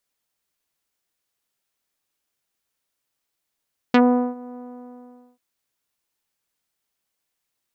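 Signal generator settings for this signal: synth note saw B3 24 dB/octave, low-pass 1 kHz, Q 0.73, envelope 2.5 oct, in 0.07 s, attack 4.7 ms, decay 0.40 s, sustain -23.5 dB, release 0.82 s, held 0.62 s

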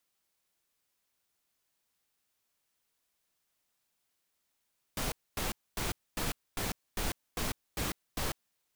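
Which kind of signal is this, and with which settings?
noise bursts pink, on 0.15 s, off 0.25 s, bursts 9, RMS -33.5 dBFS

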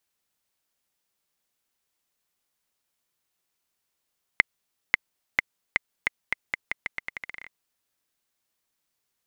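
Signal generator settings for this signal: bouncing ball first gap 0.54 s, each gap 0.83, 2.08 kHz, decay 16 ms -1.5 dBFS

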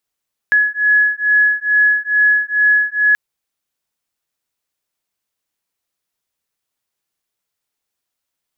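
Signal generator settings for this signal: beating tones 1.69 kHz, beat 2.3 Hz, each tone -14 dBFS 2.63 s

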